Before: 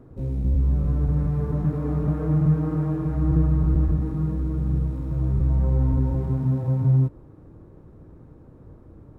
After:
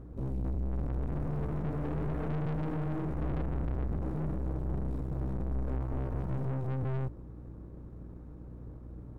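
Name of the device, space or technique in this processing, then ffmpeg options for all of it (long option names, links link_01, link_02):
valve amplifier with mains hum: -af "aeval=exprs='(tanh(39.8*val(0)+0.65)-tanh(0.65))/39.8':channel_layout=same,aeval=exprs='val(0)+0.00501*(sin(2*PI*60*n/s)+sin(2*PI*2*60*n/s)/2+sin(2*PI*3*60*n/s)/3+sin(2*PI*4*60*n/s)/4+sin(2*PI*5*60*n/s)/5)':channel_layout=same"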